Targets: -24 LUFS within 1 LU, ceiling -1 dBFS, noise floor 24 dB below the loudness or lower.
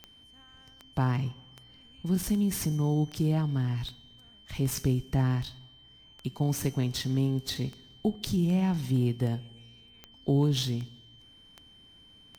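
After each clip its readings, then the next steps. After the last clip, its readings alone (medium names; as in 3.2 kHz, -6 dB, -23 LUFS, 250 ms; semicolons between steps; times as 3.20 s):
clicks found 17; steady tone 3.1 kHz; tone level -54 dBFS; loudness -29.5 LUFS; peak level -14.0 dBFS; loudness target -24.0 LUFS
-> de-click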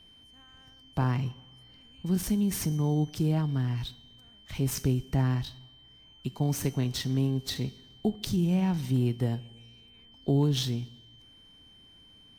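clicks found 0; steady tone 3.1 kHz; tone level -54 dBFS
-> band-stop 3.1 kHz, Q 30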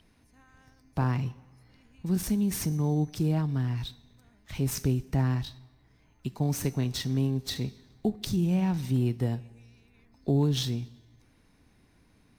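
steady tone not found; loudness -29.5 LUFS; peak level -14.0 dBFS; loudness target -24.0 LUFS
-> trim +5.5 dB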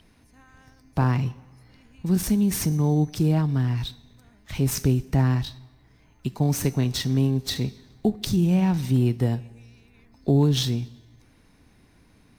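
loudness -24.0 LUFS; peak level -8.5 dBFS; noise floor -57 dBFS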